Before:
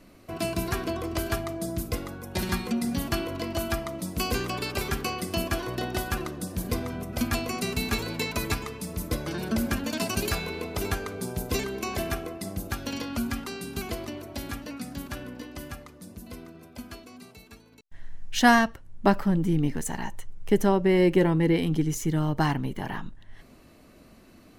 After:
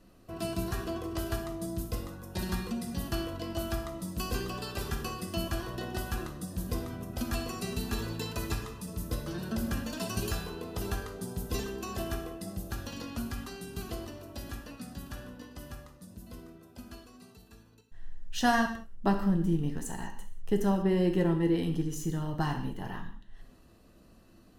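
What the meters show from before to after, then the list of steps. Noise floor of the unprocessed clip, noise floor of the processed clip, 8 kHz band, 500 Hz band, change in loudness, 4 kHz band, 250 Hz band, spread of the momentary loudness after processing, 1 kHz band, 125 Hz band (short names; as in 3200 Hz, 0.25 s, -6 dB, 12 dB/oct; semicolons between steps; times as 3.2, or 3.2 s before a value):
-53 dBFS, -58 dBFS, -6.5 dB, -6.5 dB, -5.5 dB, -7.0 dB, -5.0 dB, 17 LU, -6.5 dB, -4.0 dB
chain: low shelf 87 Hz +7 dB; notch 2200 Hz, Q 5; non-linear reverb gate 0.22 s falling, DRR 4 dB; gain -8 dB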